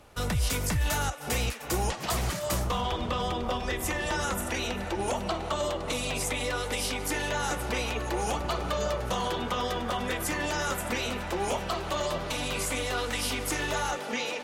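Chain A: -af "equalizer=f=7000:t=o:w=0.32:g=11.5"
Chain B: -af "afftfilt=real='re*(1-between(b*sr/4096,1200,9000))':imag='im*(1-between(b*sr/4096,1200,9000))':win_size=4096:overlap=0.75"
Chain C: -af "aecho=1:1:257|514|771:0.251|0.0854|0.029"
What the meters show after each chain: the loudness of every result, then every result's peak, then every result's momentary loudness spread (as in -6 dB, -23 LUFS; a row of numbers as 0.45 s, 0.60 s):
-28.5 LUFS, -32.5 LUFS, -30.0 LUFS; -13.0 dBFS, -19.5 dBFS, -17.0 dBFS; 4 LU, 3 LU, 2 LU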